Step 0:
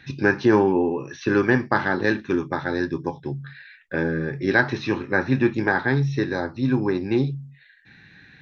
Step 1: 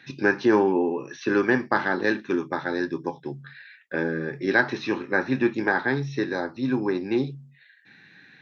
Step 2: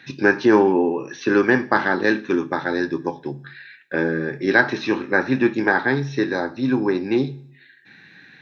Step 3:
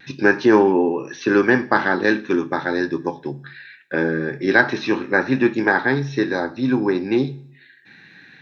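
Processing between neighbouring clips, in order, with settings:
high-pass 200 Hz 12 dB/octave; trim -1.5 dB
two-slope reverb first 0.64 s, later 1.6 s, from -26 dB, DRR 16.5 dB; trim +4.5 dB
vibrato 0.41 Hz 11 cents; trim +1 dB

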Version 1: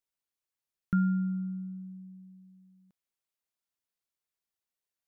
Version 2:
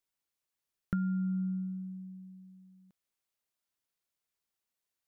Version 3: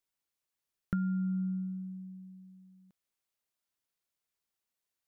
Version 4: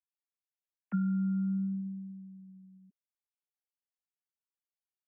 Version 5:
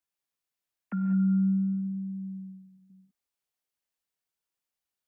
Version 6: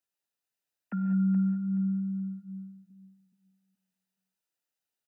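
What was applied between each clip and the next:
dynamic bell 200 Hz, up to +4 dB, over -39 dBFS, Q 7.7; compression 6:1, threshold -32 dBFS, peak gain reduction 10.5 dB; trim +2 dB
no audible change
formants replaced by sine waves; trim +2 dB
peak limiter -30 dBFS, peak gain reduction 7.5 dB; gated-style reverb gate 220 ms rising, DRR 5.5 dB; trim +5.5 dB
comb of notches 1.1 kHz; feedback delay 425 ms, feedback 26%, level -9 dB

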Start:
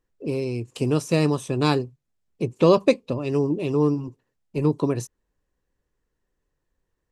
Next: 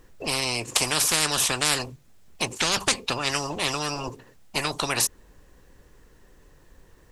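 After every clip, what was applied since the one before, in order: spectrum-flattening compressor 10:1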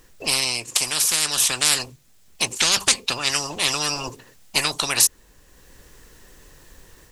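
treble shelf 2.1 kHz +10.5 dB; level rider gain up to 5 dB; trim -1 dB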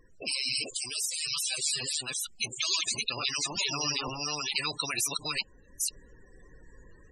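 chunks repeated in reverse 453 ms, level -1 dB; loudest bins only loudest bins 32; trim -5.5 dB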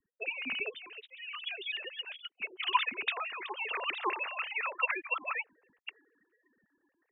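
formants replaced by sine waves; three bands expanded up and down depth 70%; trim -4.5 dB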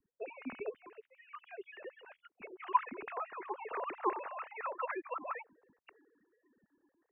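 Gaussian low-pass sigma 6.2 samples; trim +3 dB

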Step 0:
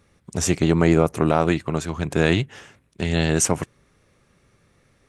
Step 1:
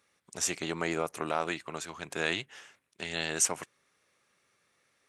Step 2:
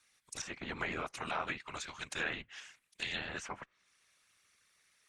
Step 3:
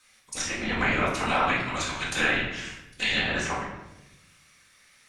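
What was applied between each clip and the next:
high-pass 1.2 kHz 6 dB/octave; trim -5 dB
whisper effect; amplifier tone stack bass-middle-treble 5-5-5; low-pass that closes with the level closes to 1.5 kHz, closed at -40 dBFS; trim +10 dB
simulated room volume 320 m³, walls mixed, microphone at 2 m; trim +7.5 dB

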